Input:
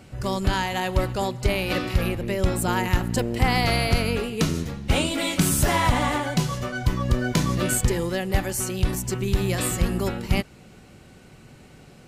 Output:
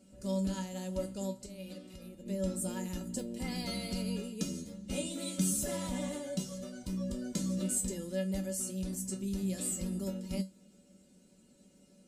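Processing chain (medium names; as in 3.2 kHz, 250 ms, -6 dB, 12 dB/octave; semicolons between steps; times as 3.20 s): ten-band graphic EQ 125 Hz -12 dB, 250 Hz +11 dB, 500 Hz +3 dB, 1 kHz -8 dB, 2 kHz -6 dB, 8 kHz +10 dB; 1.33–2.26 s: compression 12:1, threshold -28 dBFS, peak gain reduction 12.5 dB; feedback comb 190 Hz, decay 0.21 s, harmonics odd, mix 90%; trim -3.5 dB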